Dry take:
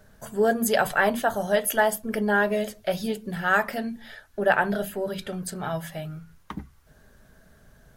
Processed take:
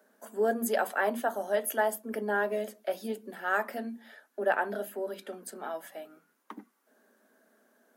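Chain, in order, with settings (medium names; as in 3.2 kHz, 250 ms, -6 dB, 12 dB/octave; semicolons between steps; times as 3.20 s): steep high-pass 220 Hz 72 dB/octave; peaking EQ 4 kHz -7 dB 2.2 oct; trim -5 dB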